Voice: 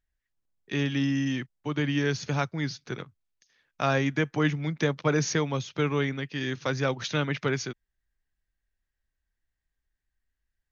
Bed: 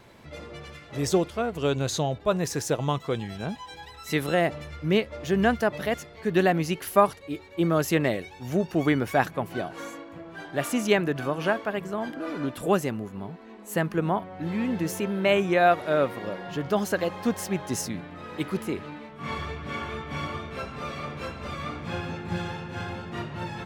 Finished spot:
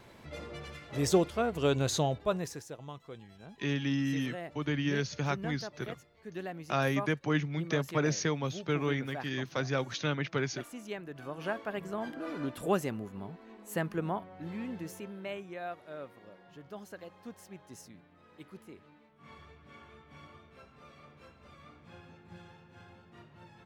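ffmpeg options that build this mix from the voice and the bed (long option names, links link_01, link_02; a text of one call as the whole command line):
ffmpeg -i stem1.wav -i stem2.wav -filter_complex "[0:a]adelay=2900,volume=-4.5dB[link_01];[1:a]volume=10dB,afade=type=out:start_time=2.05:duration=0.6:silence=0.158489,afade=type=in:start_time=11.06:duration=0.84:silence=0.237137,afade=type=out:start_time=13.55:duration=1.9:silence=0.188365[link_02];[link_01][link_02]amix=inputs=2:normalize=0" out.wav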